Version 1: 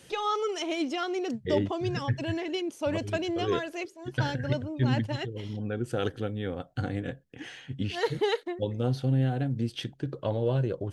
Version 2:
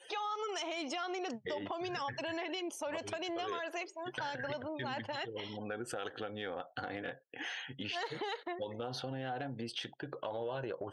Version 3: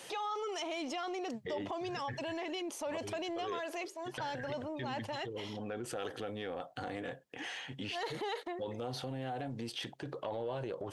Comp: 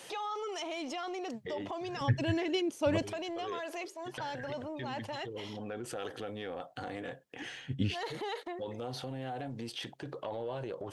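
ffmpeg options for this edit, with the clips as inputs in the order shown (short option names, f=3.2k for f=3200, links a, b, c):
-filter_complex "[0:a]asplit=2[a][b];[2:a]asplit=3[c][d][e];[c]atrim=end=2.012[f];[a]atrim=start=2.008:end=3.022[g];[d]atrim=start=3.018:end=7.422[h];[b]atrim=start=7.418:end=7.942[i];[e]atrim=start=7.938[j];[f][g]acrossfade=d=0.004:c1=hsin:c2=hsin[k];[k][h]acrossfade=d=0.004:c1=hsin:c2=hsin[l];[l][i]acrossfade=d=0.004:c1=hsin:c2=hsin[m];[m][j]acrossfade=d=0.004:c1=hsin:c2=hsin"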